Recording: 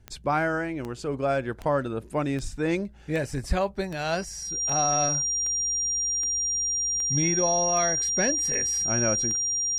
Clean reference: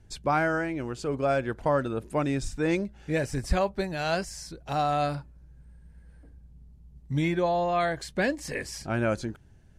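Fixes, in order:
click removal
notch filter 5,700 Hz, Q 30

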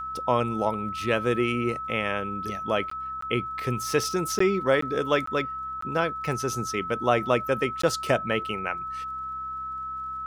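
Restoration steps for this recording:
click removal
hum removal 65.5 Hz, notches 5
notch filter 1,300 Hz, Q 30
repair the gap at 0:02.90/0:03.21/0:04.39/0:04.81/0:05.26/0:05.81/0:07.82, 14 ms

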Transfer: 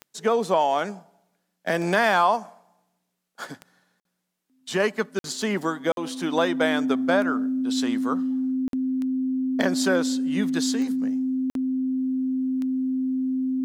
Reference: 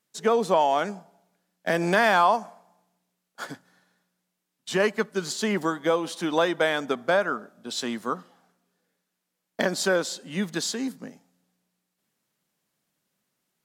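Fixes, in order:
click removal
notch filter 260 Hz, Q 30
repair the gap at 0:04.00/0:05.19/0:05.92/0:08.68/0:11.50, 52 ms

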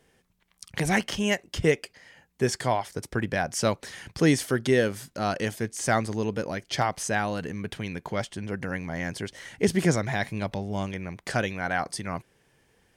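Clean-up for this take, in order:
clipped peaks rebuilt −10.5 dBFS

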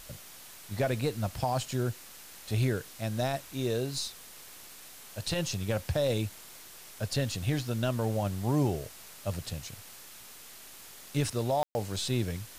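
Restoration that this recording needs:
ambience match 0:11.63–0:11.75
noise reduction from a noise print 27 dB

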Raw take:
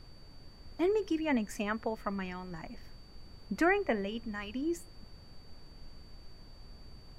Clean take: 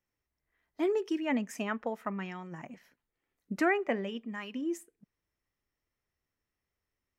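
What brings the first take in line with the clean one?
notch filter 4,600 Hz, Q 30
noise reduction from a noise print 30 dB

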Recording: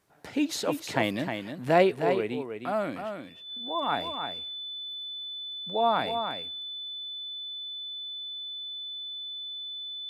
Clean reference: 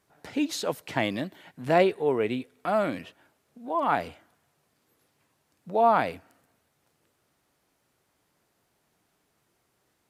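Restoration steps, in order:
notch filter 3,500 Hz, Q 30
echo removal 310 ms −7 dB
level correction +4 dB, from 0:02.00

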